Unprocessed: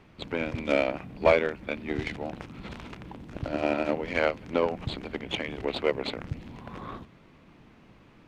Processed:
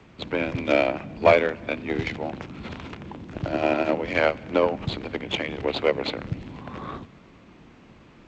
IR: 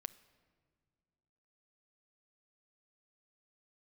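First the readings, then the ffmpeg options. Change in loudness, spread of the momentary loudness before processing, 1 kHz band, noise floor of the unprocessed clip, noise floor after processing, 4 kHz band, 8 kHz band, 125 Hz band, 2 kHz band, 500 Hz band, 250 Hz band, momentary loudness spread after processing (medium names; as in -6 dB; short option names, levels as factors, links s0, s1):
+4.5 dB, 16 LU, +5.0 dB, -56 dBFS, -51 dBFS, +4.5 dB, no reading, +4.5 dB, +4.5 dB, +4.5 dB, +4.0 dB, 16 LU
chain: -filter_complex "[0:a]asplit=2[s0][s1];[1:a]atrim=start_sample=2205,afade=t=out:st=0.36:d=0.01,atrim=end_sample=16317,asetrate=26019,aresample=44100[s2];[s1][s2]afir=irnorm=-1:irlink=0,volume=0.75[s3];[s0][s3]amix=inputs=2:normalize=0,afreqshift=21" -ar 16000 -c:a g722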